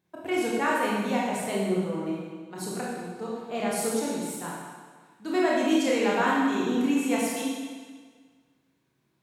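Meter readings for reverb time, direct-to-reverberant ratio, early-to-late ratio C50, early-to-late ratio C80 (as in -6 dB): 1.6 s, -5.5 dB, -1.0 dB, 1.0 dB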